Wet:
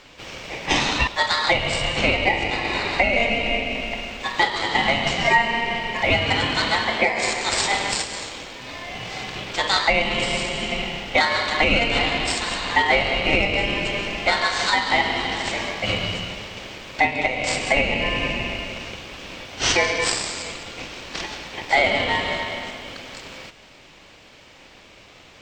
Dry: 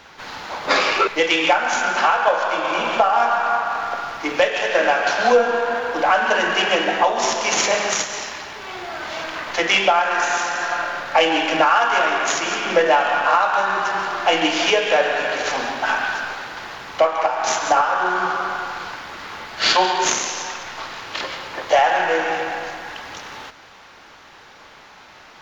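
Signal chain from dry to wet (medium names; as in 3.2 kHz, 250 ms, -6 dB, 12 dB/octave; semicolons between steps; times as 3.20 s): ring modulator 1.4 kHz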